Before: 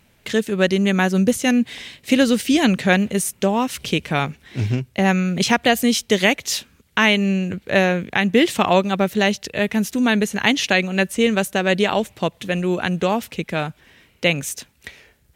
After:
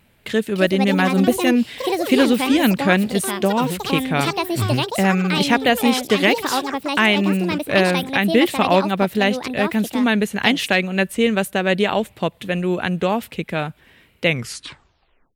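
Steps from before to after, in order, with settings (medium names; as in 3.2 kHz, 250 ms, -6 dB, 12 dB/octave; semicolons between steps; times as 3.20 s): tape stop on the ending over 1.11 s; ever faster or slower copies 372 ms, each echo +6 st, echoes 2, each echo -6 dB; peaking EQ 6.1 kHz -8.5 dB 0.62 oct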